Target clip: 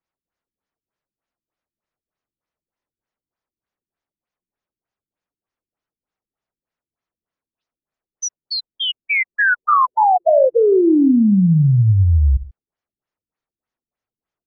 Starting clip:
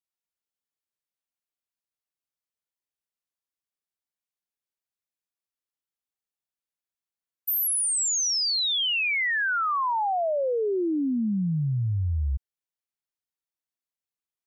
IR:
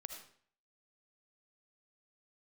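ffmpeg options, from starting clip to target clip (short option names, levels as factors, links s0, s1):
-filter_complex "[0:a]acontrast=38,asplit=2[s0][s1];[1:a]atrim=start_sample=2205,atrim=end_sample=6174,lowpass=2200[s2];[s1][s2]afir=irnorm=-1:irlink=0,volume=2.37[s3];[s0][s3]amix=inputs=2:normalize=0,afftfilt=real='re*lt(b*sr/1024,350*pow(7300/350,0.5+0.5*sin(2*PI*3.3*pts/sr)))':imag='im*lt(b*sr/1024,350*pow(7300/350,0.5+0.5*sin(2*PI*3.3*pts/sr)))':win_size=1024:overlap=0.75"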